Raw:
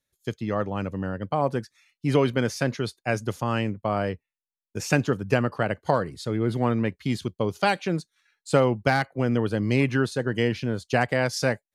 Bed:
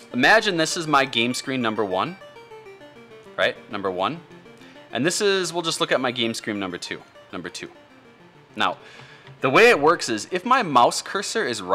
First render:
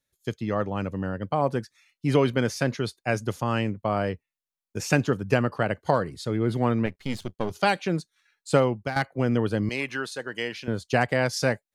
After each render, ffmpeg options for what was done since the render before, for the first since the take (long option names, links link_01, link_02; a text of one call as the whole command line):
ffmpeg -i in.wav -filter_complex "[0:a]asettb=1/sr,asplit=3[link_01][link_02][link_03];[link_01]atrim=end=6.864[link_04];[link_02]atrim=start=6.86:end=7.51,asetpts=PTS-STARTPTS,afade=type=in:duration=0.004:curve=qsin,afade=type=out:start_time=0.646:duration=0.004:curve=qsin,aeval=exprs='if(lt(val(0),0),0.251*val(0),val(0))':channel_layout=same[link_05];[link_03]atrim=start=7.506[link_06];[link_04][link_05]acrossfade=duration=0.004:curve1=hsin:curve2=qsin[link_07];[link_07][link_06]acrossfade=duration=0.004:curve1=qsin:curve2=hsin,asettb=1/sr,asplit=3[link_08][link_09][link_10];[link_08]atrim=end=9.694[link_11];[link_09]atrim=start=9.69:end=10.68,asetpts=PTS-STARTPTS,afade=type=in:duration=0.004:curve=qsin,afade=type=out:start_time=0.986:duration=0.004:curve=qsin,highpass=frequency=1000:poles=1[link_12];[link_10]atrim=start=10.676[link_13];[link_11][link_12]acrossfade=duration=0.004:curve1=hsin:curve2=qsin[link_14];[link_14][link_13]acrossfade=duration=0.004:curve1=qsin:curve2=hsin,asplit=2[link_15][link_16];[link_15]atrim=end=8.96,asetpts=PTS-STARTPTS,afade=type=out:start_time=8.56:duration=0.4:silence=0.237137[link_17];[link_16]atrim=start=8.96,asetpts=PTS-STARTPTS,afade=type=in:duration=0.004:curve=hsin:silence=0.237137[link_18];[link_17][link_18]concat=n=2:v=0:a=1" out.wav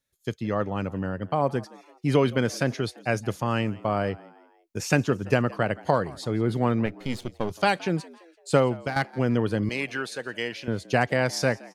ffmpeg -i in.wav -filter_complex "[0:a]asplit=4[link_01][link_02][link_03][link_04];[link_02]adelay=169,afreqshift=81,volume=-22dB[link_05];[link_03]adelay=338,afreqshift=162,volume=-28.4dB[link_06];[link_04]adelay=507,afreqshift=243,volume=-34.8dB[link_07];[link_01][link_05][link_06][link_07]amix=inputs=4:normalize=0" out.wav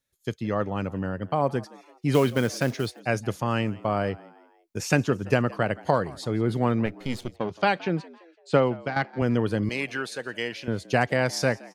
ffmpeg -i in.wav -filter_complex "[0:a]asettb=1/sr,asplit=3[link_01][link_02][link_03];[link_01]atrim=end=2.144[link_04];[link_02]atrim=start=2.14:end=3,asetpts=PTS-STARTPTS,afade=type=in:duration=0.004:curve=qsin,afade=type=out:start_time=0.856:duration=0.004:curve=qsin,acrusher=bits=5:mode=log:mix=0:aa=0.000001[link_05];[link_03]atrim=start=2.996[link_06];[link_04][link_05]acrossfade=duration=0.004:curve1=hsin:curve2=qsin[link_07];[link_07][link_06]acrossfade=duration=0.004:curve1=qsin:curve2=hsin,asettb=1/sr,asplit=3[link_08][link_09][link_10];[link_08]atrim=end=7.364[link_11];[link_09]atrim=start=7.36:end=9.22,asetpts=PTS-STARTPTS,afade=type=in:duration=0.004:curve=qsin,afade=type=out:start_time=1.856:duration=0.004:curve=qsin,highpass=110,lowpass=3900[link_12];[link_10]atrim=start=9.216[link_13];[link_11][link_12]acrossfade=duration=0.004:curve1=hsin:curve2=qsin[link_14];[link_14][link_13]acrossfade=duration=0.004:curve1=qsin:curve2=hsin" out.wav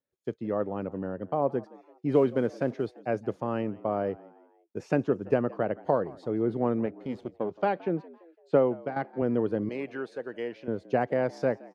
ffmpeg -i in.wav -af "bandpass=frequency=420:width_type=q:width=0.91:csg=0" out.wav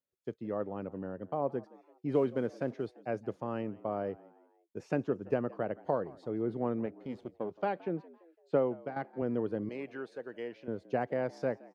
ffmpeg -i in.wav -af "volume=-6dB" out.wav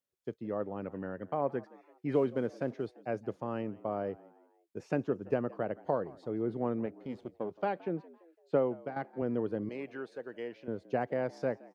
ffmpeg -i in.wav -filter_complex "[0:a]asettb=1/sr,asplit=3[link_01][link_02][link_03];[link_01]atrim=end=0.834[link_04];[link_02]atrim=start=0.83:end=2.15,asetpts=PTS-STARTPTS,afade=type=in:duration=0.004:curve=qsin,afade=type=out:start_time=1.316:duration=0.004:curve=qsin,equalizer=frequency=1900:width_type=o:width=1.1:gain=9[link_05];[link_03]atrim=start=2.146[link_06];[link_04][link_05]acrossfade=duration=0.004:curve1=hsin:curve2=qsin[link_07];[link_07][link_06]acrossfade=duration=0.004:curve1=qsin:curve2=hsin" out.wav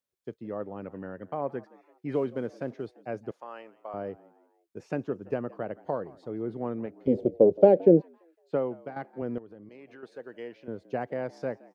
ffmpeg -i in.wav -filter_complex "[0:a]asettb=1/sr,asplit=3[link_01][link_02][link_03];[link_01]atrim=end=3.314[link_04];[link_02]atrim=start=3.31:end=3.94,asetpts=PTS-STARTPTS,afade=type=in:duration=0.004:curve=qsin,afade=type=out:start_time=0.626:duration=0.004:curve=qsin,highpass=730[link_05];[link_03]atrim=start=3.936[link_06];[link_04][link_05]acrossfade=duration=0.004:curve1=hsin:curve2=qsin[link_07];[link_07][link_06]acrossfade=duration=0.004:curve1=qsin:curve2=hsin,asettb=1/sr,asplit=3[link_08][link_09][link_10];[link_08]atrim=end=7.074[link_11];[link_09]atrim=start=7.07:end=8.02,asetpts=PTS-STARTPTS,afade=type=in:duration=0.004:curve=qsin,afade=type=out:start_time=0.946:duration=0.004:curve=qsin,lowshelf=frequency=770:width_type=q:width=3:gain=13.5[link_12];[link_10]atrim=start=8.016[link_13];[link_11][link_12]acrossfade=duration=0.004:curve1=hsin:curve2=qsin[link_14];[link_14][link_13]acrossfade=duration=0.004:curve1=qsin:curve2=hsin,asettb=1/sr,asplit=3[link_15][link_16][link_17];[link_15]atrim=end=9.384[link_18];[link_16]atrim=start=9.38:end=10.03,asetpts=PTS-STARTPTS,afade=type=in:duration=0.004:curve=qsin,afade=type=out:start_time=0.646:duration=0.004:curve=qsin,acompressor=threshold=-46dB:ratio=4:attack=3.2:release=140:knee=1:detection=peak[link_19];[link_17]atrim=start=10.026[link_20];[link_18][link_19]acrossfade=duration=0.004:curve1=hsin:curve2=qsin[link_21];[link_21][link_20]acrossfade=duration=0.004:curve1=qsin:curve2=hsin" out.wav